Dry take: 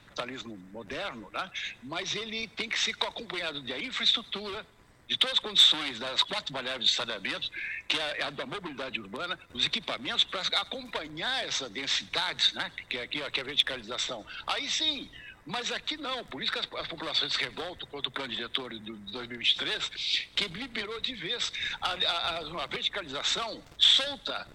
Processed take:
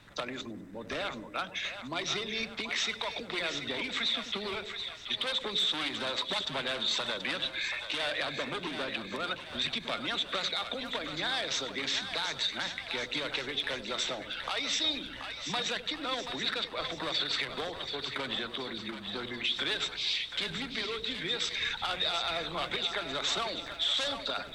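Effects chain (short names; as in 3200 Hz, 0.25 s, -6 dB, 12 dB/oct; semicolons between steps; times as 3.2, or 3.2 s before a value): limiter -21.5 dBFS, peak gain reduction 11.5 dB; split-band echo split 560 Hz, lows 89 ms, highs 0.731 s, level -8 dB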